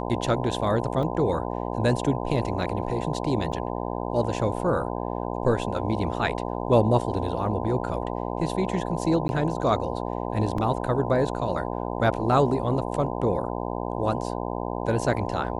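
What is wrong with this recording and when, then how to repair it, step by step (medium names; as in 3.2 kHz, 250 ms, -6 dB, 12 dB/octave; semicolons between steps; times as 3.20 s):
buzz 60 Hz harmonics 17 -30 dBFS
1.03 s: dropout 2.3 ms
3.52–3.53 s: dropout 5.2 ms
9.28–9.29 s: dropout 11 ms
10.58 s: dropout 3.5 ms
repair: de-hum 60 Hz, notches 17; interpolate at 1.03 s, 2.3 ms; interpolate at 3.52 s, 5.2 ms; interpolate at 9.28 s, 11 ms; interpolate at 10.58 s, 3.5 ms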